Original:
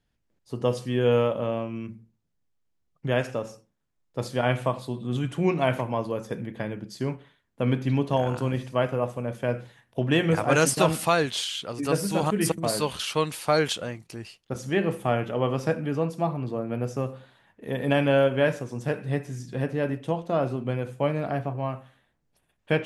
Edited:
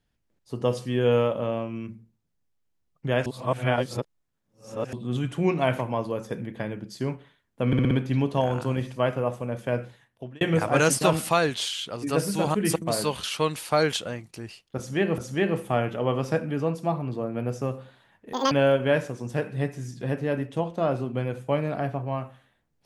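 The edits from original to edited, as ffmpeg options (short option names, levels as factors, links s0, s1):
-filter_complex "[0:a]asplit=11[s0][s1][s2][s3][s4][s5][s6][s7][s8][s9][s10];[s0]atrim=end=3.262[s11];[s1]atrim=start=3.258:end=4.932,asetpts=PTS-STARTPTS,areverse[s12];[s2]atrim=start=4.928:end=7.732[s13];[s3]atrim=start=7.668:end=7.732[s14];[s4]atrim=start=7.668:end=7.732[s15];[s5]atrim=start=7.668:end=7.732[s16];[s6]atrim=start=7.668:end=10.17,asetpts=PTS-STARTPTS,afade=t=out:st=1.902:d=0.6[s17];[s7]atrim=start=10.17:end=14.942,asetpts=PTS-STARTPTS,afade=t=in:d=0.004:c=hsin[s18];[s8]atrim=start=14.528:end=17.684[s19];[s9]atrim=start=17.68:end=18.03,asetpts=PTS-STARTPTS,asetrate=83790,aresample=44100[s20];[s10]atrim=start=18.026[s21];[s11][s12]acrossfade=d=0.004:c1=hsin:c2=hsin[s22];[s22][s13]acrossfade=d=0.004:c1=hsin:c2=hsin[s23];[s23][s14]acrossfade=d=0.004:c1=hsin:c2=hsin[s24];[s24][s15]acrossfade=d=0.004:c1=hsin:c2=hsin[s25];[s25][s16]acrossfade=d=0.004:c1=hsin:c2=hsin[s26];[s17][s18]concat=n=2:v=0:a=1[s27];[s26][s27]acrossfade=d=0.004:c1=hsin:c2=hsin[s28];[s28][s19]acrossfade=d=0.004:c1=hsin:c2=hsin[s29];[s29][s20]acrossfade=d=0.004:c1=hsin:c2=hsin[s30];[s30][s21]acrossfade=d=0.004:c1=hsin:c2=hsin"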